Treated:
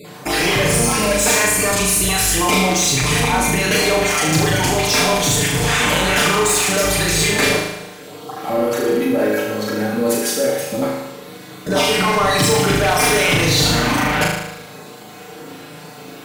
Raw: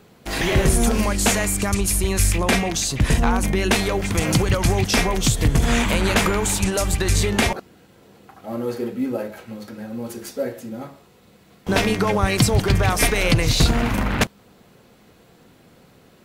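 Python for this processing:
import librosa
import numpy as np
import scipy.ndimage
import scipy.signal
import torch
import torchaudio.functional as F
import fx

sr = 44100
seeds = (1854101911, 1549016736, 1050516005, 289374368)

p1 = fx.spec_dropout(x, sr, seeds[0], share_pct=21)
p2 = fx.highpass(p1, sr, hz=240.0, slope=6)
p3 = p2 + 0.7 * np.pad(p2, (int(6.7 * sr / 1000.0), 0))[:len(p2)]
p4 = fx.over_compress(p3, sr, threshold_db=-33.0, ratio=-1.0)
p5 = p3 + F.gain(torch.from_numpy(p4), -2.5).numpy()
p6 = 10.0 ** (-17.5 / 20.0) * np.tanh(p5 / 10.0 ** (-17.5 / 20.0))
p7 = p6 + fx.room_flutter(p6, sr, wall_m=6.5, rt60_s=0.93, dry=0)
y = F.gain(torch.from_numpy(p7), 4.0).numpy()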